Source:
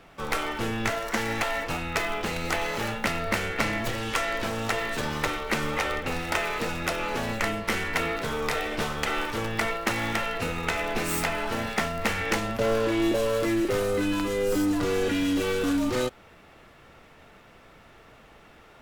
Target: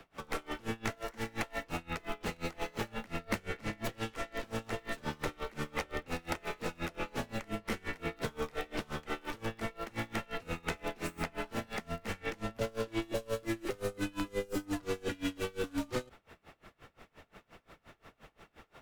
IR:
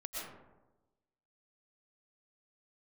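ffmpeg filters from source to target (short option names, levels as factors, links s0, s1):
-filter_complex "[0:a]acrossover=split=170|480|3300[s0][s1][s2][s3];[s0]acompressor=threshold=0.0178:ratio=4[s4];[s1]acompressor=threshold=0.02:ratio=4[s5];[s2]acompressor=threshold=0.0178:ratio=4[s6];[s3]acompressor=threshold=0.00631:ratio=4[s7];[s4][s5][s6][s7]amix=inputs=4:normalize=0,aeval=exprs='val(0)*pow(10,-27*(0.5-0.5*cos(2*PI*5.7*n/s))/20)':c=same"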